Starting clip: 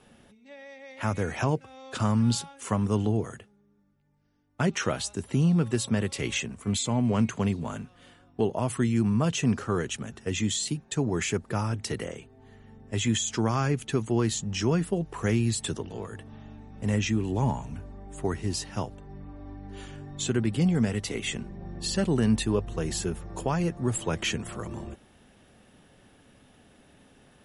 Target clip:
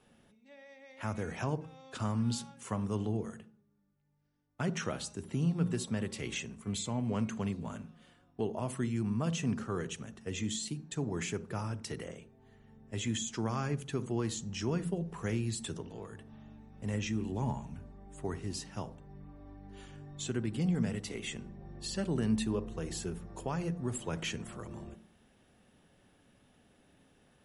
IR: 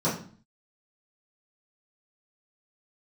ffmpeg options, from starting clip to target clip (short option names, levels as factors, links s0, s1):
-filter_complex "[0:a]asplit=2[s0][s1];[1:a]atrim=start_sample=2205,adelay=38[s2];[s1][s2]afir=irnorm=-1:irlink=0,volume=0.0398[s3];[s0][s3]amix=inputs=2:normalize=0,volume=0.376"